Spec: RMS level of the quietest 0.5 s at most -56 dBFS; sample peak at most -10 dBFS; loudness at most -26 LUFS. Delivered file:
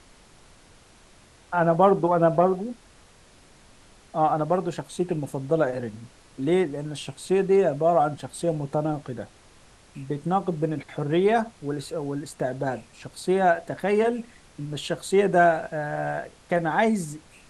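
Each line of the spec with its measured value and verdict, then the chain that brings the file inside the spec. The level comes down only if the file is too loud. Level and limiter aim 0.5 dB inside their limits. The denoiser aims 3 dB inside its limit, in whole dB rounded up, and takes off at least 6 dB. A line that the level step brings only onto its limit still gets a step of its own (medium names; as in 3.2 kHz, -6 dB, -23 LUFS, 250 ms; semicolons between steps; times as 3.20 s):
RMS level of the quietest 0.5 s -53 dBFS: fail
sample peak -6.0 dBFS: fail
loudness -24.5 LUFS: fail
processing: noise reduction 6 dB, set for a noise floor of -53 dBFS; trim -2 dB; peak limiter -10.5 dBFS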